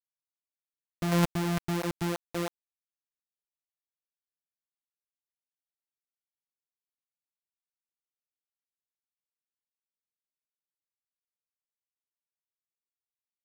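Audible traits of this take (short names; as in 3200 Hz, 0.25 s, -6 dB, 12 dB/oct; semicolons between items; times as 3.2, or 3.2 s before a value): a buzz of ramps at a fixed pitch in blocks of 256 samples; tremolo triangle 2.6 Hz, depth 65%; a quantiser's noise floor 6-bit, dither none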